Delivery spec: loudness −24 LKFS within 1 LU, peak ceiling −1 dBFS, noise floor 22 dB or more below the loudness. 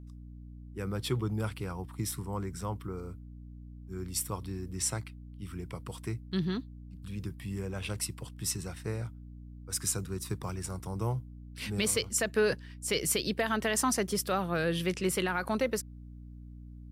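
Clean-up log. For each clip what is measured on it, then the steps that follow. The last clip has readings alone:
mains hum 60 Hz; hum harmonics up to 300 Hz; level of the hum −45 dBFS; integrated loudness −33.0 LKFS; sample peak −16.5 dBFS; target loudness −24.0 LKFS
→ hum removal 60 Hz, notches 5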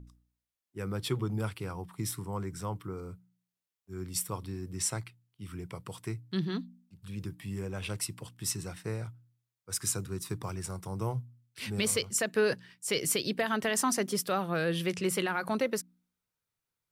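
mains hum none found; integrated loudness −33.5 LKFS; sample peak −16.0 dBFS; target loudness −24.0 LKFS
→ level +9.5 dB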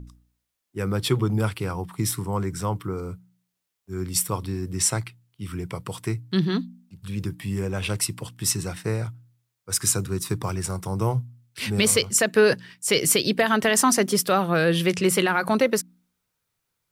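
integrated loudness −24.0 LKFS; sample peak −6.5 dBFS; background noise floor −79 dBFS

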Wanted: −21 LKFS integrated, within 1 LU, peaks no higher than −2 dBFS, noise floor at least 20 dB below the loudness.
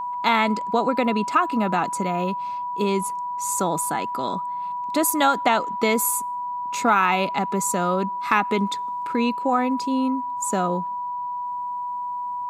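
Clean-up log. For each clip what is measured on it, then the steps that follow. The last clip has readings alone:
interfering tone 980 Hz; level of the tone −26 dBFS; integrated loudness −23.0 LKFS; sample peak −4.5 dBFS; target loudness −21.0 LKFS
→ notch filter 980 Hz, Q 30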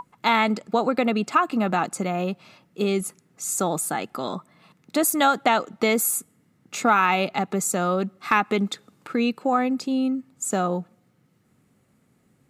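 interfering tone none found; integrated loudness −23.5 LKFS; sample peak −5.5 dBFS; target loudness −21.0 LKFS
→ level +2.5 dB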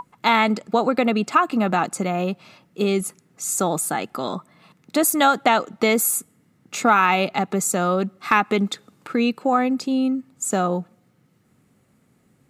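integrated loudness −21.0 LKFS; sample peak −3.0 dBFS; background noise floor −62 dBFS

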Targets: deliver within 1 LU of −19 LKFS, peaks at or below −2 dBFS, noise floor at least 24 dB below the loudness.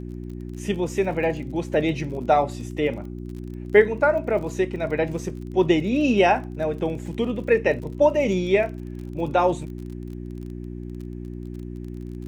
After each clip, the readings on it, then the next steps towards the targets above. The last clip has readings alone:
crackle rate 36 per second; mains hum 60 Hz; hum harmonics up to 360 Hz; level of the hum −32 dBFS; integrated loudness −23.0 LKFS; sample peak −3.0 dBFS; target loudness −19.0 LKFS
→ click removal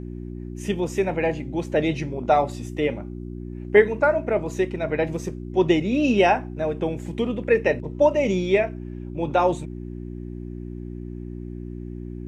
crackle rate 0 per second; mains hum 60 Hz; hum harmonics up to 360 Hz; level of the hum −32 dBFS
→ hum removal 60 Hz, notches 6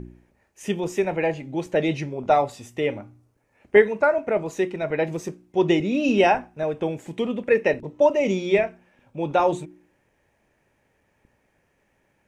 mains hum none found; integrated loudness −23.0 LKFS; sample peak −3.0 dBFS; target loudness −19.0 LKFS
→ level +4 dB
brickwall limiter −2 dBFS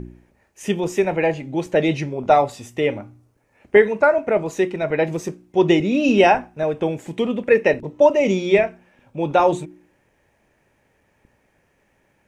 integrated loudness −19.5 LKFS; sample peak −2.0 dBFS; background noise floor −64 dBFS

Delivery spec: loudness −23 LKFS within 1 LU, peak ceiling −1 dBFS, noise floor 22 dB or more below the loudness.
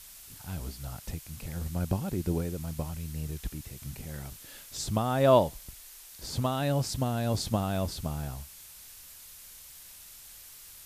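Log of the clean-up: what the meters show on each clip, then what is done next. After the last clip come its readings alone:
background noise floor −50 dBFS; target noise floor −54 dBFS; integrated loudness −31.5 LKFS; sample peak −10.5 dBFS; target loudness −23.0 LKFS
→ noise reduction from a noise print 6 dB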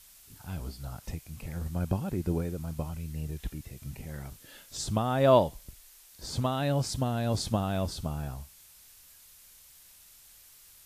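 background noise floor −56 dBFS; integrated loudness −31.5 LKFS; sample peak −10.5 dBFS; target loudness −23.0 LKFS
→ level +8.5 dB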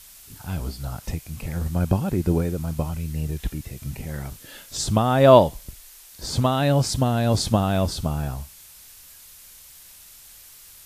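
integrated loudness −23.0 LKFS; sample peak −2.0 dBFS; background noise floor −47 dBFS

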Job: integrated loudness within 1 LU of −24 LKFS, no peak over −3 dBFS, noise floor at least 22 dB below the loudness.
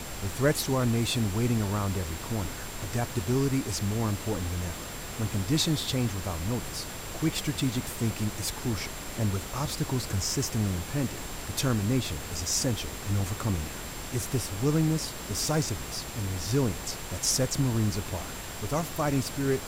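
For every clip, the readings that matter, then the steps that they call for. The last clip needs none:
interfering tone 7,400 Hz; level of the tone −47 dBFS; background noise floor −39 dBFS; target noise floor −52 dBFS; integrated loudness −29.5 LKFS; sample peak −13.5 dBFS; target loudness −24.0 LKFS
→ notch filter 7,400 Hz, Q 30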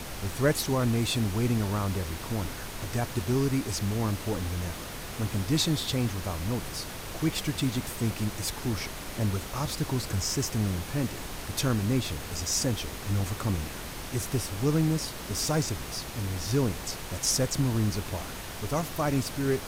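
interfering tone none found; background noise floor −39 dBFS; target noise floor −52 dBFS
→ noise reduction from a noise print 13 dB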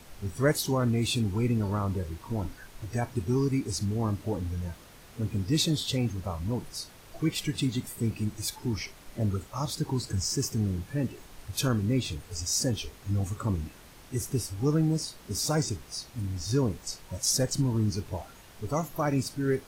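background noise floor −51 dBFS; target noise floor −52 dBFS
→ noise reduction from a noise print 6 dB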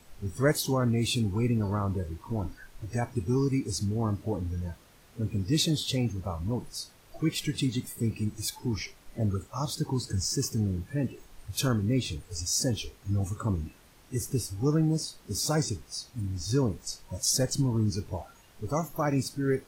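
background noise floor −57 dBFS; integrated loudness −30.0 LKFS; sample peak −13.5 dBFS; target loudness −24.0 LKFS
→ level +6 dB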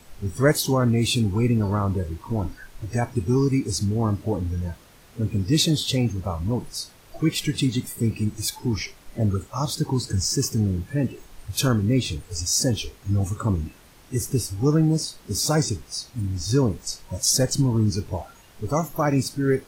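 integrated loudness −24.0 LKFS; sample peak −7.5 dBFS; background noise floor −51 dBFS

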